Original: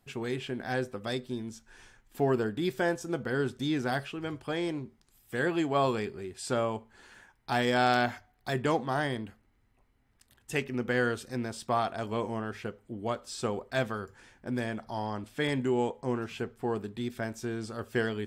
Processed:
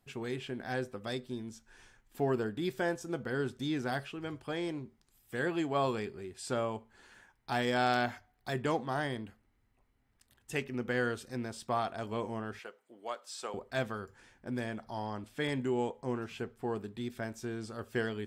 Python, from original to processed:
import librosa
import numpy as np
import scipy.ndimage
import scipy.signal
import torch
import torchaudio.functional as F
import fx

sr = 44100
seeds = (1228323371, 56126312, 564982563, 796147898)

y = fx.highpass(x, sr, hz=590.0, slope=12, at=(12.59, 13.54))
y = F.gain(torch.from_numpy(y), -4.0).numpy()